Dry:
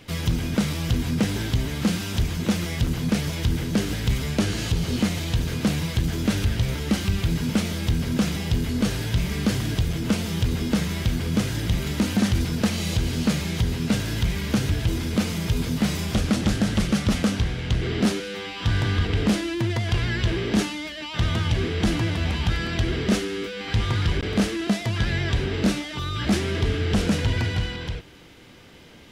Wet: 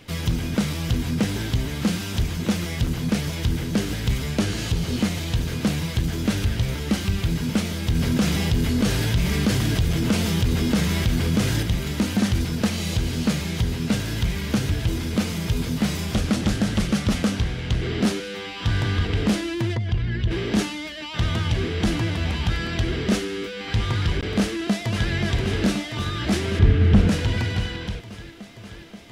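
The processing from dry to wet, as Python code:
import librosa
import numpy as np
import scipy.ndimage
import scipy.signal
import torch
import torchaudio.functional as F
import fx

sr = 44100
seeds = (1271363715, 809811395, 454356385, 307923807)

y = fx.env_flatten(x, sr, amount_pct=50, at=(7.95, 11.63))
y = fx.envelope_sharpen(y, sr, power=1.5, at=(19.74, 20.3), fade=0.02)
y = fx.echo_throw(y, sr, start_s=24.39, length_s=0.73, ms=530, feedback_pct=80, wet_db=-6.5)
y = fx.bass_treble(y, sr, bass_db=9, treble_db=-12, at=(26.59, 27.09))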